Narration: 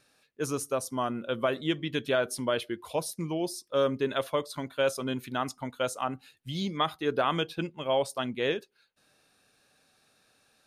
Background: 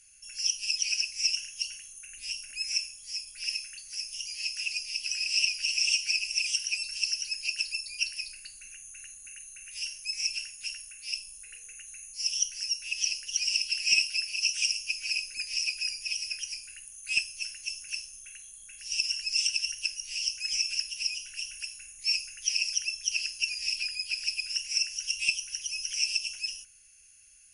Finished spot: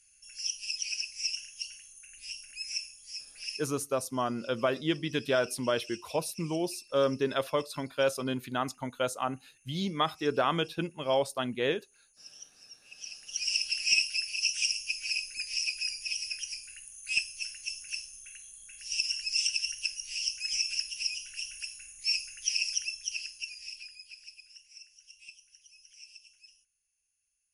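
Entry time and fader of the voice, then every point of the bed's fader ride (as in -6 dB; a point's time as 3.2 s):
3.20 s, -0.5 dB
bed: 3.52 s -5.5 dB
3.96 s -21 dB
12.82 s -21 dB
13.5 s -1.5 dB
22.73 s -1.5 dB
24.7 s -23 dB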